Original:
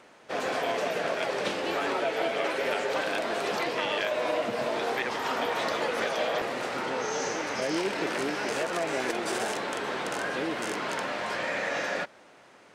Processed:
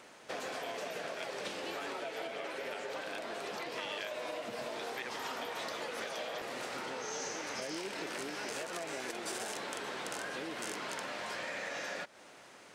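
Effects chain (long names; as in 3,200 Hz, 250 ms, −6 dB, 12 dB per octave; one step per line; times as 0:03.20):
downward compressor 4 to 1, threshold −38 dBFS, peak gain reduction 12 dB
high-shelf EQ 3,700 Hz +8 dB, from 0:02.27 +3.5 dB, from 0:03.72 +9 dB
level −2 dB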